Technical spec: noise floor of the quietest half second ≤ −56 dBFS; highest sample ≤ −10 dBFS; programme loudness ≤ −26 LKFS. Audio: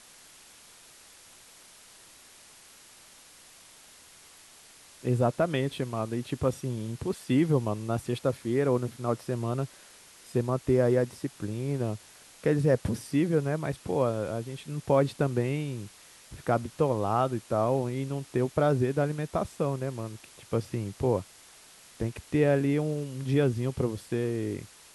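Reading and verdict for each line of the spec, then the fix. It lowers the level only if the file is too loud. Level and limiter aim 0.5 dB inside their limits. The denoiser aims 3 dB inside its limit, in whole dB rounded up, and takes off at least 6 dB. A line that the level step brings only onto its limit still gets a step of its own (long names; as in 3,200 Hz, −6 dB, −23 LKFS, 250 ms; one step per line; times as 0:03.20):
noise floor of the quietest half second −54 dBFS: out of spec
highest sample −11.5 dBFS: in spec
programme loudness −29.0 LKFS: in spec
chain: broadband denoise 6 dB, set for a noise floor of −54 dBFS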